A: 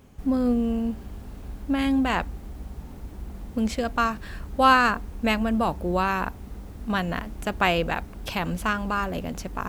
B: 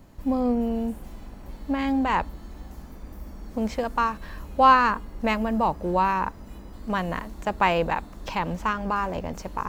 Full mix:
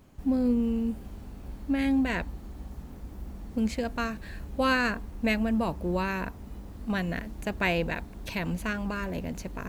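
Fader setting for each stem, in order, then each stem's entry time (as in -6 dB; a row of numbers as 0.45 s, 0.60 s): -5.5 dB, -9.0 dB; 0.00 s, 0.00 s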